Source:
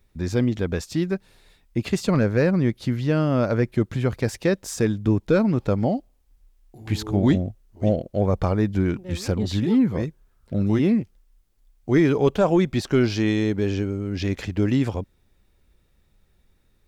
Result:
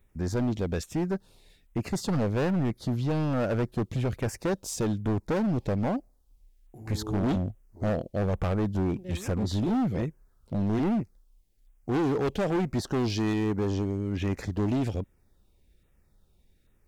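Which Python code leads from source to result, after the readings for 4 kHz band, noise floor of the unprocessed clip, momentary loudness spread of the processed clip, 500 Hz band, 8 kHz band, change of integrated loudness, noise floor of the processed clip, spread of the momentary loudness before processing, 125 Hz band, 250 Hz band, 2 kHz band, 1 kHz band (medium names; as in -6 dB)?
-5.5 dB, -63 dBFS, 7 LU, -7.0 dB, -3.0 dB, -6.5 dB, -65 dBFS, 9 LU, -5.5 dB, -6.5 dB, -7.5 dB, -3.0 dB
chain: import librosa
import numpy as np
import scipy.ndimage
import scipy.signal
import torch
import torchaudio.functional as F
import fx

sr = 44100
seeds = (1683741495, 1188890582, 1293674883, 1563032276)

y = fx.filter_lfo_notch(x, sr, shape='saw_down', hz=1.2, low_hz=870.0, high_hz=5200.0, q=0.97)
y = np.clip(10.0 ** (21.5 / 20.0) * y, -1.0, 1.0) / 10.0 ** (21.5 / 20.0)
y = y * librosa.db_to_amplitude(-2.0)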